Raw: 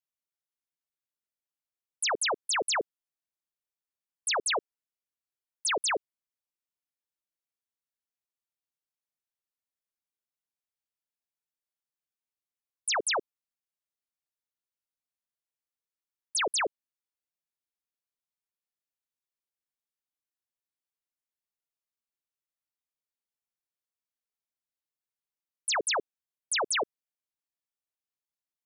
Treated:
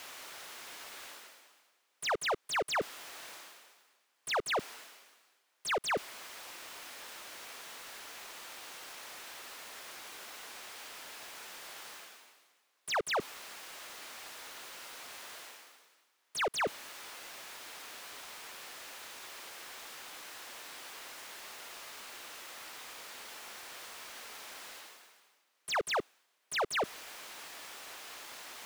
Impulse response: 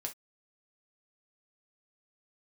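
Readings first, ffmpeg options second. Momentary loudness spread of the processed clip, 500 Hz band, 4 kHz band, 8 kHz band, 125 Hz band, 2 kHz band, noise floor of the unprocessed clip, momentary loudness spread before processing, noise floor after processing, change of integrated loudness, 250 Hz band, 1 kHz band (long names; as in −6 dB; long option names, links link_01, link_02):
15 LU, −2.0 dB, −5.0 dB, −8.0 dB, can't be measured, −2.5 dB, below −85 dBFS, 7 LU, −76 dBFS, −10.5 dB, −0.5 dB, −1.5 dB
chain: -filter_complex "[0:a]highpass=240,areverse,acompressor=mode=upward:threshold=-39dB:ratio=2.5,areverse,asplit=2[link_01][link_02];[link_02]highpass=frequency=720:poles=1,volume=35dB,asoftclip=type=tanh:threshold=-24dB[link_03];[link_01][link_03]amix=inputs=2:normalize=0,lowpass=frequency=2100:poles=1,volume=-6dB,volume=-2dB"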